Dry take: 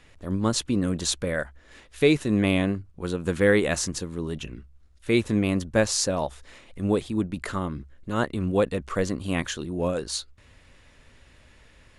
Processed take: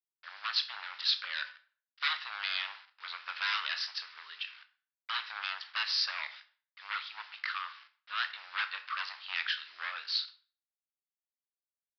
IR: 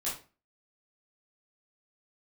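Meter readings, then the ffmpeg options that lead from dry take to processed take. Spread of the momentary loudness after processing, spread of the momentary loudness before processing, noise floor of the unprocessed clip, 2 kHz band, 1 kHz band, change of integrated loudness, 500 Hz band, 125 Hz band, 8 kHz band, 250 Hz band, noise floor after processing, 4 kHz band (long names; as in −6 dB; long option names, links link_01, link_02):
13 LU, 10 LU, −56 dBFS, −3.0 dB, −5.0 dB, −9.0 dB, −38.5 dB, below −40 dB, −25.0 dB, below −40 dB, below −85 dBFS, +1.0 dB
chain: -filter_complex "[0:a]agate=range=-14dB:threshold=-41dB:ratio=16:detection=peak,acrossover=split=3200[link_01][link_02];[link_01]aeval=exprs='0.0668*(abs(mod(val(0)/0.0668+3,4)-2)-1)':channel_layout=same[link_03];[link_03][link_02]amix=inputs=2:normalize=0,acrusher=bits=7:mix=0:aa=0.000001,asuperpass=centerf=3100:order=8:qfactor=0.52,asplit=2[link_04][link_05];[1:a]atrim=start_sample=2205,asetrate=33516,aresample=44100[link_06];[link_05][link_06]afir=irnorm=-1:irlink=0,volume=-14dB[link_07];[link_04][link_07]amix=inputs=2:normalize=0,aresample=11025,aresample=44100"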